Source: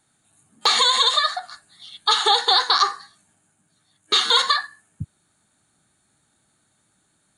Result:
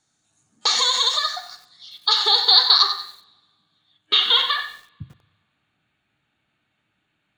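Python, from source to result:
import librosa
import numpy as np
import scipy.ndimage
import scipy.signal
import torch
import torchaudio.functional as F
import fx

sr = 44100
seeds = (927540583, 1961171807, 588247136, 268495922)

y = fx.rev_double_slope(x, sr, seeds[0], early_s=0.64, late_s=2.0, knee_db=-22, drr_db=11.0)
y = fx.filter_sweep_lowpass(y, sr, from_hz=5900.0, to_hz=2700.0, start_s=1.34, end_s=4.89, q=4.5)
y = fx.echo_crushed(y, sr, ms=93, feedback_pct=35, bits=6, wet_db=-10.5)
y = y * 10.0 ** (-6.0 / 20.0)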